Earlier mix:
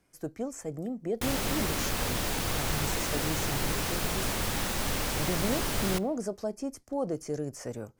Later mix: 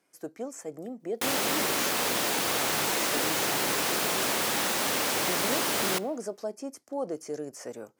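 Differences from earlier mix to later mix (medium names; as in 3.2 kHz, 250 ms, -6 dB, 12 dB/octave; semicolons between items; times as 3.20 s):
background +5.0 dB; master: add high-pass 290 Hz 12 dB/octave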